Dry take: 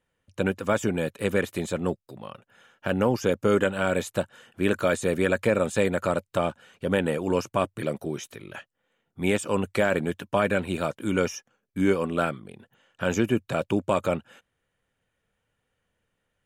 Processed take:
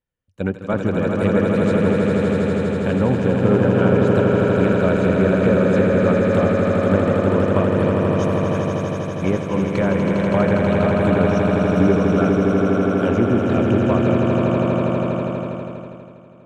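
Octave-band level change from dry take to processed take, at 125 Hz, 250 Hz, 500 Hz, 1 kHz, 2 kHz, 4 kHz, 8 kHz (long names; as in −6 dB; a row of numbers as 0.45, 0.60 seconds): +13.5 dB, +11.5 dB, +8.5 dB, +7.0 dB, +4.0 dB, +2.0 dB, can't be measured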